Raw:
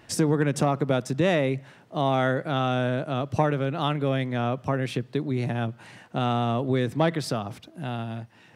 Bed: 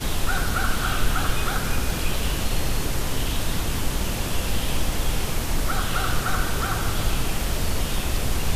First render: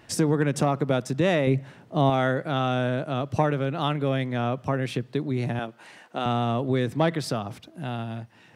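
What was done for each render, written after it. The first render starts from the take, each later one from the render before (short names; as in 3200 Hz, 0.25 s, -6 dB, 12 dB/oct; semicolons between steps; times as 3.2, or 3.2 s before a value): 1.47–2.1 low shelf 460 Hz +7 dB; 5.59–6.26 HPF 310 Hz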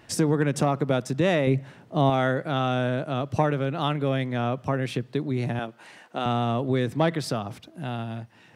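nothing audible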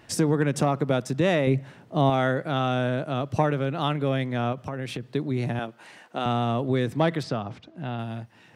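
4.52–5.05 compressor, threshold -27 dBFS; 7.23–7.99 air absorption 120 m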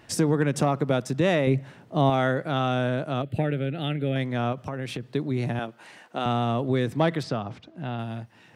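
3.22–4.16 fixed phaser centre 2500 Hz, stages 4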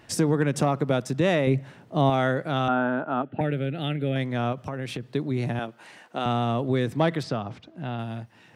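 2.68–3.41 speaker cabinet 240–2500 Hz, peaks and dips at 250 Hz +6 dB, 530 Hz -5 dB, 860 Hz +10 dB, 1400 Hz +8 dB, 2200 Hz -9 dB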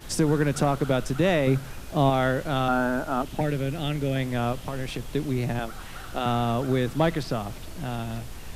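add bed -16 dB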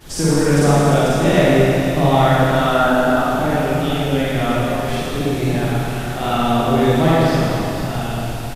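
echo 0.493 s -12.5 dB; Schroeder reverb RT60 2.6 s, DRR -9.5 dB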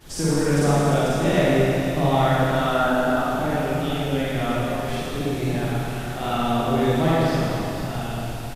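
gain -5.5 dB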